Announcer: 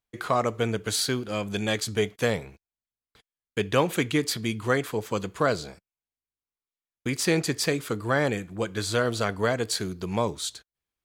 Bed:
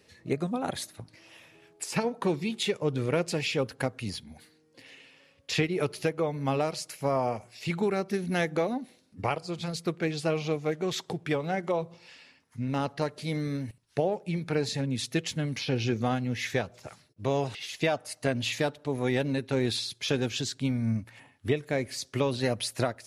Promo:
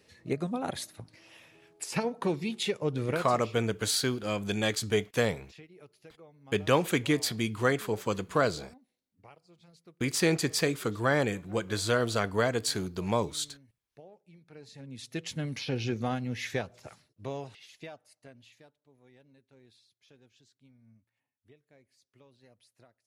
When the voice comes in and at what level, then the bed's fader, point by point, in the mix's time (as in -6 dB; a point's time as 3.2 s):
2.95 s, -2.0 dB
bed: 3.09 s -2 dB
3.61 s -25 dB
14.45 s -25 dB
15.34 s -3.5 dB
16.93 s -3.5 dB
18.83 s -32.5 dB